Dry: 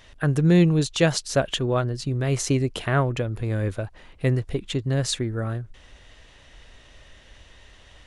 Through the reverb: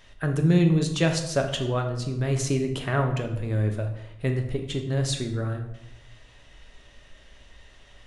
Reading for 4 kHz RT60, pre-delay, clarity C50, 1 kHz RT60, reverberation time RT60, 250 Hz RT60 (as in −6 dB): 0.60 s, 3 ms, 8.0 dB, 0.70 s, 0.80 s, 1.0 s